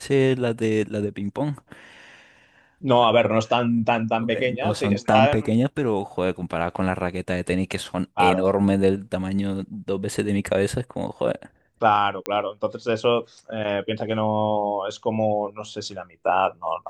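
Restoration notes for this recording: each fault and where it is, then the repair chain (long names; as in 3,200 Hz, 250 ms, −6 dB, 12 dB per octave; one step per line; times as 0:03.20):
0:12.26: click −10 dBFS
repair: click removal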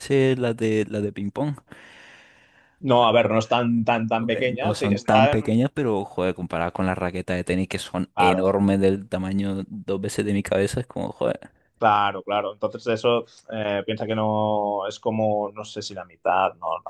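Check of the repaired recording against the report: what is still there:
none of them is left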